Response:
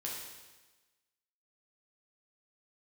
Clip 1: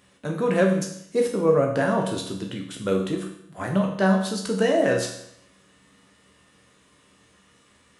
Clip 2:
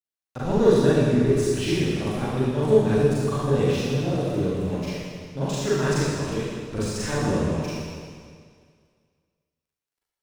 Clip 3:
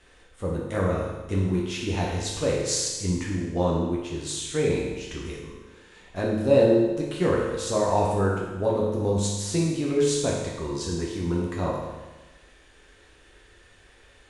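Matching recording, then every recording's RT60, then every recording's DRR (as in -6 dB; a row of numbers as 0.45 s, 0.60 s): 3; 0.75 s, 2.0 s, 1.2 s; 1.0 dB, -10.5 dB, -4.0 dB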